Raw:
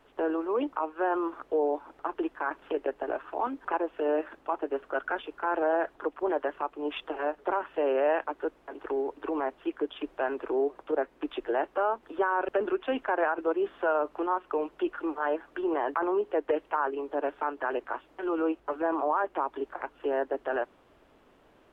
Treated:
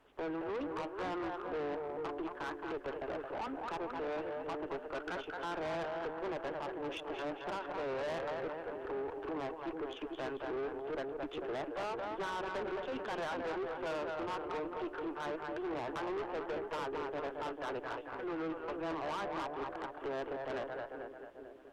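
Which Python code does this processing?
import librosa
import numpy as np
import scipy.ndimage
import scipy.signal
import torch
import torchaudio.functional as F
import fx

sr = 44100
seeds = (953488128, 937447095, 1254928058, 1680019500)

y = fx.echo_split(x, sr, split_hz=440.0, low_ms=444, high_ms=220, feedback_pct=52, wet_db=-6)
y = fx.tube_stage(y, sr, drive_db=31.0, bias=0.4)
y = F.gain(torch.from_numpy(y), -4.0).numpy()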